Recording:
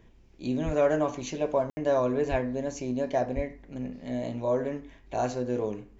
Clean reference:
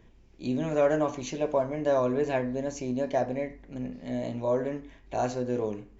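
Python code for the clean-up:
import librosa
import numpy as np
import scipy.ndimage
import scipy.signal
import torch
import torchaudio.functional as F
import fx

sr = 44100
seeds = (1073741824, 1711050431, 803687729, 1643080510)

y = fx.highpass(x, sr, hz=140.0, slope=24, at=(0.65, 0.77), fade=0.02)
y = fx.highpass(y, sr, hz=140.0, slope=24, at=(2.3, 2.42), fade=0.02)
y = fx.highpass(y, sr, hz=140.0, slope=24, at=(3.35, 3.47), fade=0.02)
y = fx.fix_ambience(y, sr, seeds[0], print_start_s=0.0, print_end_s=0.5, start_s=1.7, end_s=1.77)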